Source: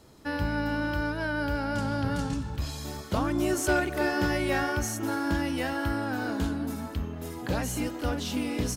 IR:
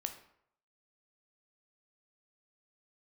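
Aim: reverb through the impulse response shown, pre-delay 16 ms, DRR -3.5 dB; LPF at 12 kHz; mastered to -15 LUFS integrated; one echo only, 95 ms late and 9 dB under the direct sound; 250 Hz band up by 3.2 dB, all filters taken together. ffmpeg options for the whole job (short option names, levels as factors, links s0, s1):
-filter_complex "[0:a]lowpass=12000,equalizer=f=250:t=o:g=4,aecho=1:1:95:0.355,asplit=2[s0][s1];[1:a]atrim=start_sample=2205,adelay=16[s2];[s1][s2]afir=irnorm=-1:irlink=0,volume=1.58[s3];[s0][s3]amix=inputs=2:normalize=0,volume=2.66"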